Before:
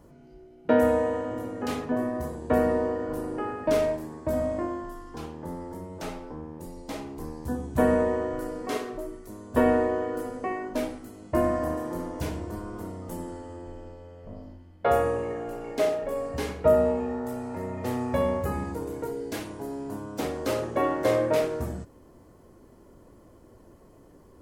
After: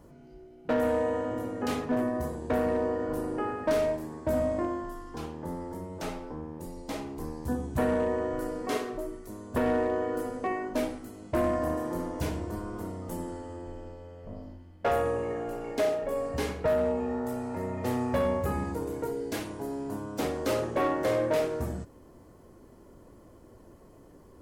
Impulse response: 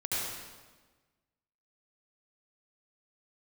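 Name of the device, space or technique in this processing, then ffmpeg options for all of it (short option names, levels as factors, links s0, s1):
limiter into clipper: -af "alimiter=limit=0.178:level=0:latency=1:release=482,asoftclip=type=hard:threshold=0.0891"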